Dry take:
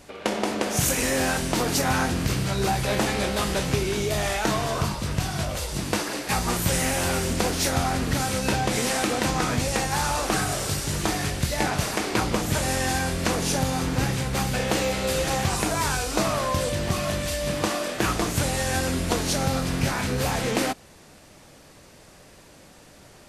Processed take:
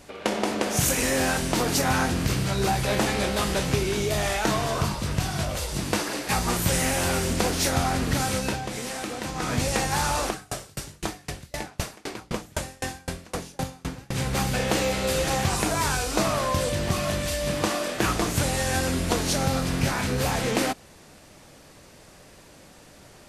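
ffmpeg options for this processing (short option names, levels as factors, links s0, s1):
-filter_complex "[0:a]asplit=3[s0][s1][s2];[s0]afade=t=out:st=10.29:d=0.02[s3];[s1]aeval=exprs='val(0)*pow(10,-33*if(lt(mod(3.9*n/s,1),2*abs(3.9)/1000),1-mod(3.9*n/s,1)/(2*abs(3.9)/1000),(mod(3.9*n/s,1)-2*abs(3.9)/1000)/(1-2*abs(3.9)/1000))/20)':c=same,afade=t=in:st=10.29:d=0.02,afade=t=out:st=14.14:d=0.02[s4];[s2]afade=t=in:st=14.14:d=0.02[s5];[s3][s4][s5]amix=inputs=3:normalize=0,asplit=3[s6][s7][s8];[s6]atrim=end=8.61,asetpts=PTS-STARTPTS,afade=t=out:st=8.35:d=0.26:silence=0.398107[s9];[s7]atrim=start=8.61:end=9.34,asetpts=PTS-STARTPTS,volume=0.398[s10];[s8]atrim=start=9.34,asetpts=PTS-STARTPTS,afade=t=in:d=0.26:silence=0.398107[s11];[s9][s10][s11]concat=n=3:v=0:a=1"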